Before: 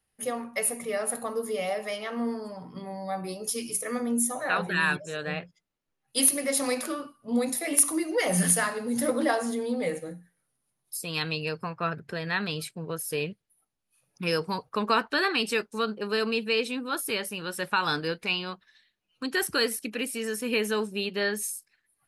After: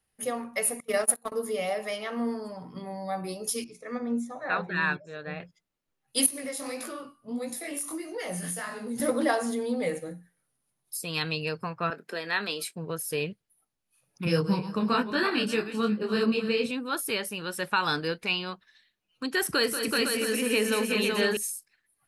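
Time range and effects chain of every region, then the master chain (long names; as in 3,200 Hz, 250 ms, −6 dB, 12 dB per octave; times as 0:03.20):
0:00.80–0:01.32: noise gate −31 dBFS, range −24 dB + high-shelf EQ 5,000 Hz +6.5 dB + leveller curve on the samples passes 1
0:03.64–0:05.40: high-frequency loss of the air 150 metres + notch filter 3,000 Hz, Q 5.8 + expander for the loud parts, over −38 dBFS
0:06.26–0:09.00: downward compressor 3 to 1, threshold −29 dBFS + chorus effect 1.6 Hz, delay 17 ms, depth 7.7 ms
0:11.90–0:12.76: high-pass filter 250 Hz 24 dB per octave + high-shelf EQ 6,500 Hz +5 dB + double-tracking delay 24 ms −13.5 dB
0:14.25–0:16.71: feedback delay that plays each chunk backwards 172 ms, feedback 44%, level −11 dB + parametric band 150 Hz +14.5 dB 1.7 octaves + micro pitch shift up and down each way 36 cents
0:19.45–0:21.37: multi-tap delay 40/184/219/379/504/668 ms −18/−10/−13.5/−3/−6.5/−12.5 dB + multiband upward and downward compressor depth 40%
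whole clip: no processing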